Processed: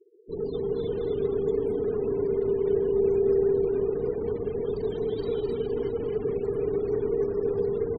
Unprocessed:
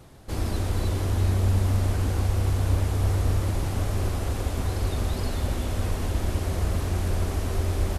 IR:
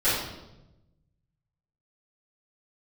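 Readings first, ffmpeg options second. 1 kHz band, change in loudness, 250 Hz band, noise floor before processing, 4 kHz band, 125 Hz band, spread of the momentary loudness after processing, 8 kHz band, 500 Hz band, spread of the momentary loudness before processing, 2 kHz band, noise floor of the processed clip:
−9.5 dB, −0.5 dB, +0.5 dB, −31 dBFS, below −10 dB, −15.5 dB, 6 LU, below −35 dB, +12.0 dB, 5 LU, below −10 dB, −36 dBFS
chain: -af "aecho=1:1:260|468|634.4|767.5|874:0.631|0.398|0.251|0.158|0.1,afftfilt=real='re*gte(hypot(re,im),0.0224)':imag='im*gte(hypot(re,im),0.0224)':win_size=1024:overlap=0.75,afreqshift=-490,volume=-4.5dB"

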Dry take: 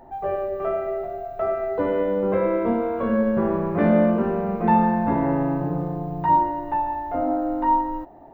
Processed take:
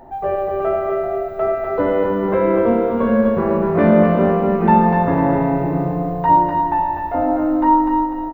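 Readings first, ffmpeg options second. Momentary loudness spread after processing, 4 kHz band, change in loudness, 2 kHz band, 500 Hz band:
7 LU, can't be measured, +5.5 dB, +6.5 dB, +6.0 dB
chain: -af "aecho=1:1:248|496|744|992|1240:0.631|0.246|0.096|0.0374|0.0146,volume=5dB"

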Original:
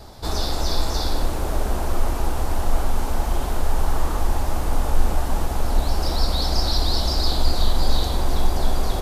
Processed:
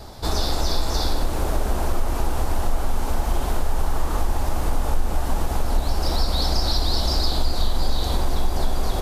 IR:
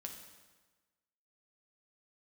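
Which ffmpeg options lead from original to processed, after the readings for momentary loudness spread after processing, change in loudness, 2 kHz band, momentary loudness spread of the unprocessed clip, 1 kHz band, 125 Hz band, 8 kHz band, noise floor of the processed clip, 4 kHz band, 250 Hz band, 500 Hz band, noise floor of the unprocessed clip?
5 LU, −0.5 dB, −0.5 dB, 4 LU, −0.5 dB, −0.5 dB, −0.5 dB, −26 dBFS, −0.5 dB, −0.5 dB, −0.5 dB, −26 dBFS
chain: -af "acompressor=threshold=-19dB:ratio=2.5,volume=2.5dB"

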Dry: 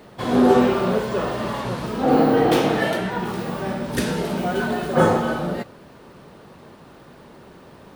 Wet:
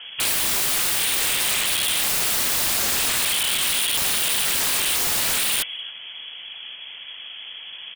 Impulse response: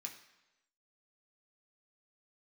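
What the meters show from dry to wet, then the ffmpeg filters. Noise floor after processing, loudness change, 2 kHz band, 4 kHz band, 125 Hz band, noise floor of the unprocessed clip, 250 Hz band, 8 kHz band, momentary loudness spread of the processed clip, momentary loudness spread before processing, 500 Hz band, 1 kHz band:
−39 dBFS, +2.0 dB, +3.0 dB, +13.5 dB, −15.0 dB, −46 dBFS, −20.0 dB, +20.5 dB, 16 LU, 11 LU, −17.5 dB, −9.0 dB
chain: -filter_complex "[0:a]highpass=frequency=52:poles=1,lowshelf=frequency=390:gain=4,lowpass=frequency=3000:width_type=q:width=0.5098,lowpass=frequency=3000:width_type=q:width=0.6013,lowpass=frequency=3000:width_type=q:width=0.9,lowpass=frequency=3000:width_type=q:width=2.563,afreqshift=-3500,acontrast=45,asplit=2[link_01][link_02];[link_02]aecho=0:1:273:0.126[link_03];[link_01][link_03]amix=inputs=2:normalize=0,aeval=exprs='(mod(7.08*val(0)+1,2)-1)/7.08':channel_layout=same"

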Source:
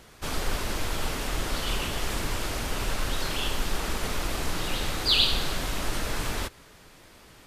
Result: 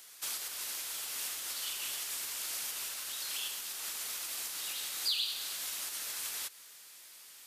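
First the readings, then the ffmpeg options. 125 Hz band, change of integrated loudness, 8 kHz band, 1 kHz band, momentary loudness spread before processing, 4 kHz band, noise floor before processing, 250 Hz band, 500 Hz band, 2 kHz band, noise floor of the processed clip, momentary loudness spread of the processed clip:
below −35 dB, −6.5 dB, +0.5 dB, −16.5 dB, 8 LU, −8.5 dB, −53 dBFS, −28.5 dB, −23.0 dB, −11.0 dB, −54 dBFS, 7 LU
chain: -af "acompressor=threshold=-31dB:ratio=4,aderivative,volume=5.5dB"

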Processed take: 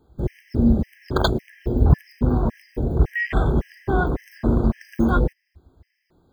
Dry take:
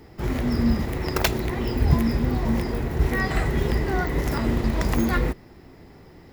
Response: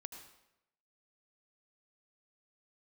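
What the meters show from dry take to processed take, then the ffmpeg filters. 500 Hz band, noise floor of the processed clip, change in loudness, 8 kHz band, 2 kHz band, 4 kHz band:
+1.5 dB, −74 dBFS, +1.5 dB, below −10 dB, 0.0 dB, −1.5 dB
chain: -af "afwtdn=0.0316,afftfilt=real='re*gt(sin(2*PI*1.8*pts/sr)*(1-2*mod(floor(b*sr/1024/1600),2)),0)':imag='im*gt(sin(2*PI*1.8*pts/sr)*(1-2*mod(floor(b*sr/1024/1600),2)),0)':win_size=1024:overlap=0.75,volume=4.5dB"

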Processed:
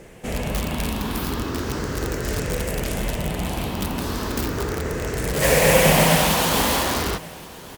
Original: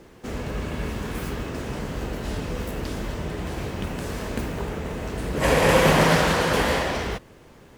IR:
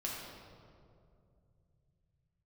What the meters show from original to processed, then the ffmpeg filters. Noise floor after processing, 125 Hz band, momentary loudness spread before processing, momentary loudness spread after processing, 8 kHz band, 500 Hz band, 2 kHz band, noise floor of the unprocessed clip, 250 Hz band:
−40 dBFS, +2.5 dB, 14 LU, 12 LU, +9.5 dB, +2.0 dB, +1.5 dB, −49 dBFS, +2.0 dB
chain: -filter_complex "[0:a]afftfilt=real='re*pow(10,7/40*sin(2*PI*(0.51*log(max(b,1)*sr/1024/100)/log(2)-(0.36)*(pts-256)/sr)))':imag='im*pow(10,7/40*sin(2*PI*(0.51*log(max(b,1)*sr/1024/100)/log(2)-(0.36)*(pts-256)/sr)))':win_size=1024:overlap=0.75,highshelf=frequency=4800:gain=-5.5,asplit=2[link_01][link_02];[link_02]aeval=exprs='(mod(11.2*val(0)+1,2)-1)/11.2':channel_layout=same,volume=-4.5dB[link_03];[link_01][link_03]amix=inputs=2:normalize=0,aemphasis=mode=production:type=cd,aecho=1:1:1127:0.0891"

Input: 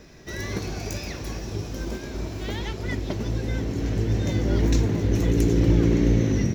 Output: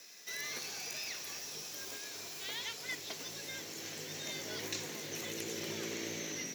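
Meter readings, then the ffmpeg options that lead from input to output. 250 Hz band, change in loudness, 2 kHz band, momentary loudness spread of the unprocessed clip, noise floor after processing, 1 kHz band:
−23.5 dB, −15.0 dB, −5.5 dB, 13 LU, −47 dBFS, −11.5 dB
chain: -filter_complex "[0:a]aderivative,afreqshift=47,acrossover=split=3900[link_01][link_02];[link_02]acompressor=threshold=-48dB:ratio=4:attack=1:release=60[link_03];[link_01][link_03]amix=inputs=2:normalize=0,volume=6dB"

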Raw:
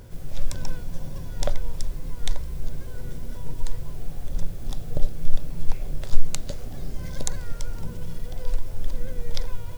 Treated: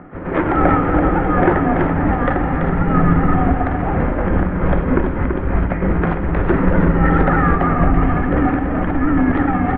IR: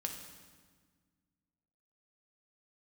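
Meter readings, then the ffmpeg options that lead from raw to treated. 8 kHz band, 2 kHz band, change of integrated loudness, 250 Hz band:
can't be measured, +24.5 dB, +18.5 dB, +26.5 dB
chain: -filter_complex "[0:a]asplit=2[link_01][link_02];[link_02]highpass=frequency=720:poles=1,volume=33dB,asoftclip=type=tanh:threshold=-1dB[link_03];[link_01][link_03]amix=inputs=2:normalize=0,lowpass=frequency=1400:poles=1,volume=-6dB,asoftclip=type=tanh:threshold=-16dB,asubboost=boost=5.5:cutoff=220,acompressor=threshold=-16dB:ratio=6,agate=range=-33dB:threshold=-10dB:ratio=3:detection=peak,highpass=frequency=230:width_type=q:width=0.5412,highpass=frequency=230:width_type=q:width=1.307,lowpass=frequency=2200:width_type=q:width=0.5176,lowpass=frequency=2200:width_type=q:width=0.7071,lowpass=frequency=2200:width_type=q:width=1.932,afreqshift=-220,aecho=1:1:334:0.422,asplit=2[link_04][link_05];[1:a]atrim=start_sample=2205[link_06];[link_05][link_06]afir=irnorm=-1:irlink=0,volume=3.5dB[link_07];[link_04][link_07]amix=inputs=2:normalize=0,alimiter=level_in=21.5dB:limit=-1dB:release=50:level=0:latency=1,volume=-1dB"

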